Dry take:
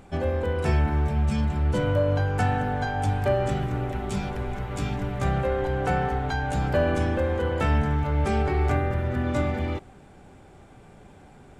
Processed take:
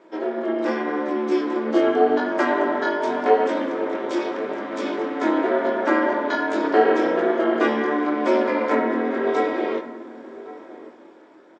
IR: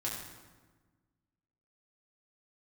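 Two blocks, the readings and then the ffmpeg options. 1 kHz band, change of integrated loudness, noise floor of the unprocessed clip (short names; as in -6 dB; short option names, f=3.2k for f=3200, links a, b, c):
+5.5 dB, +4.0 dB, -50 dBFS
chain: -filter_complex "[0:a]dynaudnorm=f=200:g=9:m=5.5dB,flanger=delay=18:depth=6.6:speed=0.84,aeval=exprs='val(0)*sin(2*PI*150*n/s)':c=same,highpass=f=310:w=0.5412,highpass=f=310:w=1.3066,equalizer=f=330:t=q:w=4:g=6,equalizer=f=760:t=q:w=4:g=-4,equalizer=f=2.7k:t=q:w=4:g=-7,equalizer=f=4.2k:t=q:w=4:g=-4,lowpass=f=5.4k:w=0.5412,lowpass=f=5.4k:w=1.3066,asplit=2[a][b];[b]adelay=1108,volume=-17dB,highshelf=f=4k:g=-24.9[c];[a][c]amix=inputs=2:normalize=0,asplit=2[d][e];[1:a]atrim=start_sample=2205[f];[e][f]afir=irnorm=-1:irlink=0,volume=-10dB[g];[d][g]amix=inputs=2:normalize=0,volume=5.5dB"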